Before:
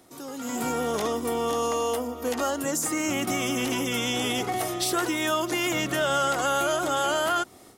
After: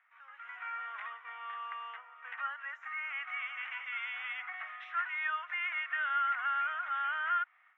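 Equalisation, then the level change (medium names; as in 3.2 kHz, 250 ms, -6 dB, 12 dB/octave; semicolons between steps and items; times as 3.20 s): inverse Chebyshev high-pass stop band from 340 Hz, stop band 70 dB; inverse Chebyshev low-pass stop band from 4.2 kHz, stop band 40 dB; distance through air 180 m; +2.5 dB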